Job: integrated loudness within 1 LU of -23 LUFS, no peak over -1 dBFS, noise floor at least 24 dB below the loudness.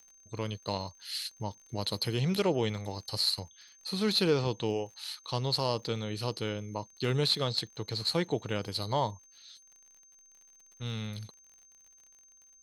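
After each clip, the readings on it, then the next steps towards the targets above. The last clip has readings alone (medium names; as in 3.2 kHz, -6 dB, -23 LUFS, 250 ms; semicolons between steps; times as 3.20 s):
tick rate 51 per s; steady tone 6.3 kHz; tone level -57 dBFS; loudness -32.0 LUFS; peak level -14.5 dBFS; loudness target -23.0 LUFS
-> de-click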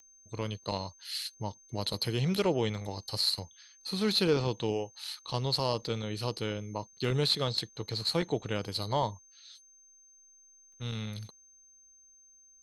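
tick rate 0.32 per s; steady tone 6.3 kHz; tone level -57 dBFS
-> band-stop 6.3 kHz, Q 30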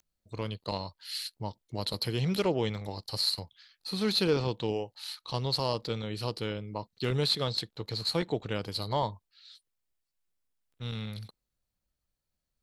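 steady tone not found; loudness -32.0 LUFS; peak level -14.5 dBFS; loudness target -23.0 LUFS
-> trim +9 dB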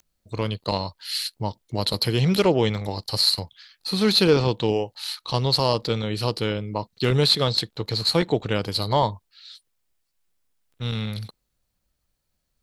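loudness -23.0 LUFS; peak level -5.5 dBFS; noise floor -76 dBFS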